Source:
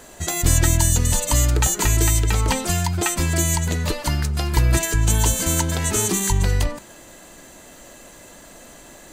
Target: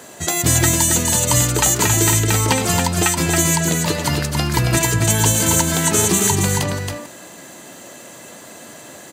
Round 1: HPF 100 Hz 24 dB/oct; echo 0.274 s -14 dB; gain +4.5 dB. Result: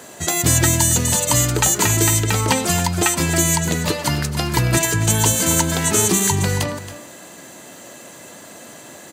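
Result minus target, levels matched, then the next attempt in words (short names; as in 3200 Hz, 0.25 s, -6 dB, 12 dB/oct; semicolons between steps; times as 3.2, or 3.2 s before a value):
echo-to-direct -9 dB
HPF 100 Hz 24 dB/oct; echo 0.274 s -5 dB; gain +4.5 dB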